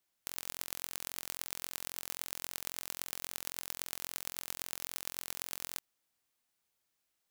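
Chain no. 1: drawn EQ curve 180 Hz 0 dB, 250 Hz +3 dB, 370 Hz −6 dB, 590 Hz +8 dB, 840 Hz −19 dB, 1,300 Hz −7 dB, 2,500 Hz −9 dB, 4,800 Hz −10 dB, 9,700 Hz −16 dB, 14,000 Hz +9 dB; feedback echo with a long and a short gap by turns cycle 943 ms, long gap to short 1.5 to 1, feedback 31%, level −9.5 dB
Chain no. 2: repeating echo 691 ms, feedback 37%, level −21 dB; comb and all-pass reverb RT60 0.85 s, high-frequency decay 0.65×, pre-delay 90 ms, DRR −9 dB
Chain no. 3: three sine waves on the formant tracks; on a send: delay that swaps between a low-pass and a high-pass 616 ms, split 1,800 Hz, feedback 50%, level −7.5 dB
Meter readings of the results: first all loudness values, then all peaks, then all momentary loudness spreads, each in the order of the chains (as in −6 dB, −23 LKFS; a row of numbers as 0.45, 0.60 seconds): −34.0, −32.5, −41.5 LKFS; −8.0, −8.5, −26.0 dBFS; 11, 4, 11 LU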